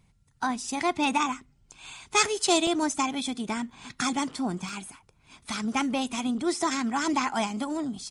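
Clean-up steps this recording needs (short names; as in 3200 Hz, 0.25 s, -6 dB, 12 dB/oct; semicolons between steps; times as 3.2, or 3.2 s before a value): interpolate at 2.67/3.71/4.69, 1.2 ms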